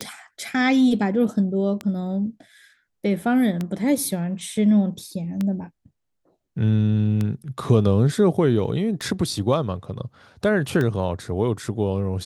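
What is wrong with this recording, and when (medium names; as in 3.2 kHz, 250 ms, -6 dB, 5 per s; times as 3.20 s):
tick 33 1/3 rpm -13 dBFS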